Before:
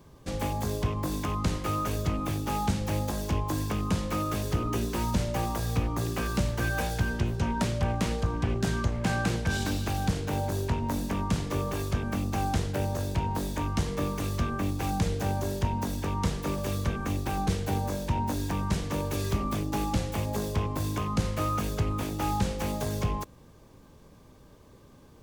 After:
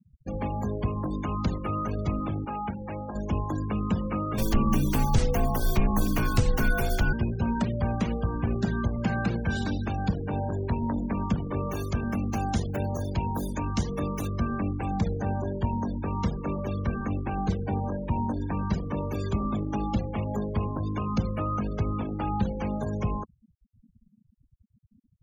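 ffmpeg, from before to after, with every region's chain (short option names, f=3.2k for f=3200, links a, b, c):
-filter_complex "[0:a]asettb=1/sr,asplit=3[a][b][c];[a]atrim=end=2.454[d];[b]atrim=start=2.45:end=3.15,asetpts=PTS-STARTPTS,afade=t=in:d=0.004:c=qsin,afade=t=out:st=0.696:d=0.004:c=qsin,acrossover=split=3200[e][f];[f]acompressor=threshold=-48dB:ratio=4:attack=1:release=60[g];[e][g]amix=inputs=2:normalize=0,lowshelf=f=360:g=-10[h];[c]atrim=start=3.146[i];[d][h]acrossfade=d=0.004:c1=hsin:c2=qsin[j];[j][i]acrossfade=d=0.004:c1=qsin:c2=hsin,asettb=1/sr,asplit=3[k][l][m];[k]atrim=end=4.384[n];[l]atrim=start=4.38:end=7.13,asetpts=PTS-STARTPTS,afade=t=in:d=0.004:c=qsin,afade=t=out:st=2.746:d=0.004:c=qsin,highshelf=f=11k:g=9.5,acontrast=72,afreqshift=-90[o];[m]atrim=start=7.126[p];[n][o]acrossfade=d=0.004:c1=hsin:c2=qsin[q];[q][p]acrossfade=d=0.004:c1=qsin:c2=hsin,asettb=1/sr,asplit=3[r][s][t];[r]atrim=end=11.654[u];[s]atrim=start=11.65:end=14.28,asetpts=PTS-STARTPTS,afade=t=in:d=0.004:c=qsin,afade=t=out:st=2.626:d=0.004:c=qsin,highshelf=f=4.7k:g=8.5,bandreject=f=7.9k:w=9.8[v];[t]atrim=start=14.276[w];[u][v]acrossfade=d=0.004:c1=hsin:c2=qsin[x];[x][w]acrossfade=d=0.004:c1=qsin:c2=hsin,equalizer=f=220:w=7.2:g=8,acrossover=split=240[y][z];[z]acompressor=threshold=-27dB:ratio=4[aa];[y][aa]amix=inputs=2:normalize=0,afftfilt=real='re*gte(hypot(re,im),0.02)':imag='im*gte(hypot(re,im),0.02)':win_size=1024:overlap=0.75"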